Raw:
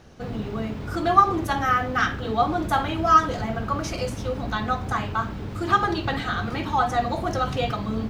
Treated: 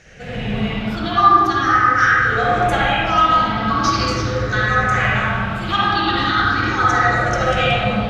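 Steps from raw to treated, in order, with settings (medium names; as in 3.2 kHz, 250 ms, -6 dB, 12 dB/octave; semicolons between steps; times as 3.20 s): drifting ripple filter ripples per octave 0.52, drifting +0.41 Hz, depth 10 dB; high-order bell 3.2 kHz +10.5 dB 2.6 oct; gain riding within 3 dB 0.5 s; reverberation RT60 1.9 s, pre-delay 43 ms, DRR -7.5 dB; trim -6.5 dB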